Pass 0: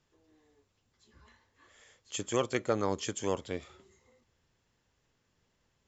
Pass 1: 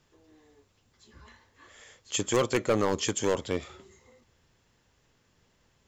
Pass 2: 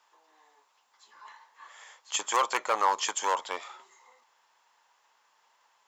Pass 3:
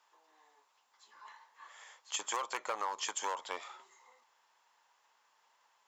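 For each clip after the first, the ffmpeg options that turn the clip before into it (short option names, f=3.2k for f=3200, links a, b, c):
-af "volume=26dB,asoftclip=hard,volume=-26dB,volume=7.5dB"
-af "highpass=f=920:t=q:w=3.7"
-af "acompressor=threshold=-28dB:ratio=10,volume=-4dB"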